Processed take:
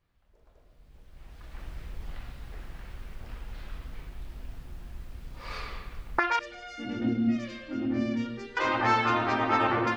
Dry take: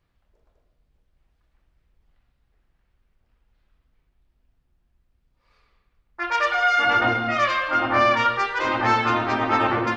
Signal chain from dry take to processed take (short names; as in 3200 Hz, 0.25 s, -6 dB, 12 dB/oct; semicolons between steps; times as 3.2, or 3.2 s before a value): recorder AGC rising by 18 dB/s; 6.39–8.57 EQ curve 150 Hz 0 dB, 220 Hz +12 dB, 1100 Hz -29 dB, 1800 Hz -17 dB, 7300 Hz -7 dB; gain -4.5 dB